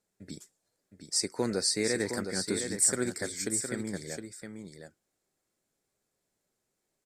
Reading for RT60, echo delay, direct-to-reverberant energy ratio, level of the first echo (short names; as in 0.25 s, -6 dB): none, 0.713 s, none, -7.0 dB